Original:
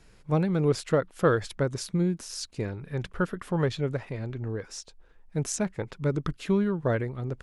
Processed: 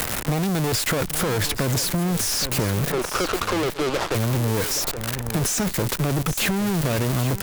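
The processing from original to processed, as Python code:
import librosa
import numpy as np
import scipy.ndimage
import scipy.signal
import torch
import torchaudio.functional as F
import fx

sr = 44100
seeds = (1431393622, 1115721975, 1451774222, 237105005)

y = x + 0.5 * 10.0 ** (-18.5 / 20.0) * np.diff(np.sign(x), prepend=np.sign(x[:1]))
y = fx.ellip_bandpass(y, sr, low_hz=300.0, high_hz=1300.0, order=3, stop_db=40, at=(2.9, 4.14), fade=0.02)
y = fx.leveller(y, sr, passes=5)
y = fx.over_compress(y, sr, threshold_db=-20.0, ratio=-1.0)
y = fx.tube_stage(y, sr, drive_db=25.0, bias=0.55)
y = y + 10.0 ** (-15.0 / 20.0) * np.pad(y, (int(821 * sr / 1000.0), 0))[:len(y)]
y = fx.band_squash(y, sr, depth_pct=70)
y = F.gain(torch.from_numpy(y), 4.5).numpy()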